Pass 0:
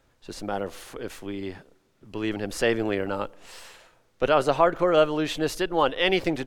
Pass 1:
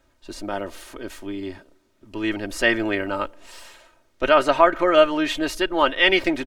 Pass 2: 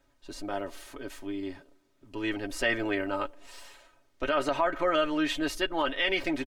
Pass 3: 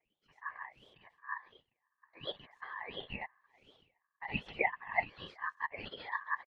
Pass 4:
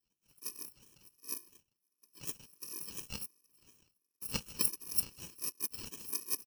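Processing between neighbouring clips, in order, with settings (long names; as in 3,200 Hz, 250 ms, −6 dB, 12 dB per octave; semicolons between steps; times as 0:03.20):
comb filter 3.2 ms, depth 63%; dynamic equaliser 1,900 Hz, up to +8 dB, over −37 dBFS, Q 0.89
comb filter 7.1 ms, depth 46%; brickwall limiter −9.5 dBFS, peak gain reduction 7.5 dB; level −6.5 dB
LFO wah 1.4 Hz 250–2,000 Hz, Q 9.4; random phases in short frames; ring modulation 1,400 Hz; level +2.5 dB
samples in bit-reversed order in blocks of 64 samples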